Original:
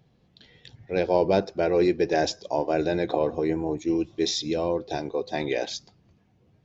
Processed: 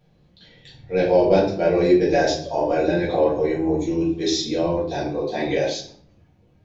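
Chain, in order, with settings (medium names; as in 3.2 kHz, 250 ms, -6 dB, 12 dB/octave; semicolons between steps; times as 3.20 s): simulated room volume 63 m³, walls mixed, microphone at 1.7 m; trim -4 dB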